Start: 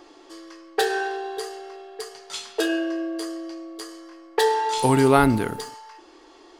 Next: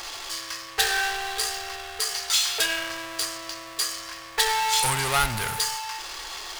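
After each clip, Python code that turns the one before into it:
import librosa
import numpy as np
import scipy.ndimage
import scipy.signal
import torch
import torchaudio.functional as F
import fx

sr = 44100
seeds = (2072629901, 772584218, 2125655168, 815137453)

y = fx.power_curve(x, sr, exponent=0.5)
y = fx.tone_stack(y, sr, knobs='10-0-10')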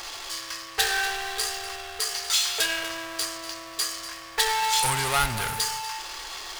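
y = x + 10.0 ** (-14.5 / 20.0) * np.pad(x, (int(243 * sr / 1000.0), 0))[:len(x)]
y = y * 10.0 ** (-1.0 / 20.0)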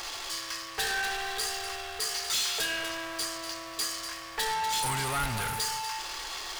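y = 10.0 ** (-25.5 / 20.0) * np.tanh(x / 10.0 ** (-25.5 / 20.0))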